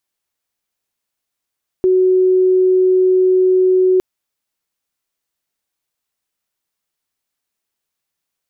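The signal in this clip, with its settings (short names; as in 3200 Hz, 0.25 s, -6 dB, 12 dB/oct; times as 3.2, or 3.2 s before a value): tone sine 371 Hz -9 dBFS 2.16 s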